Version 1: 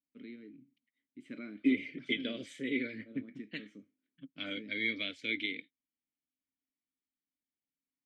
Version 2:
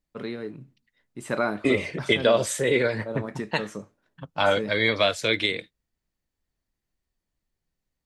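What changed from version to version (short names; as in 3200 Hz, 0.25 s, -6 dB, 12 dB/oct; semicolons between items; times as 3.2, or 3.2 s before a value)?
first voice +3.5 dB; master: remove vowel filter i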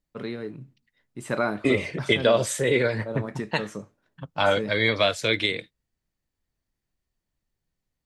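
master: add bell 120 Hz +3.5 dB 0.68 oct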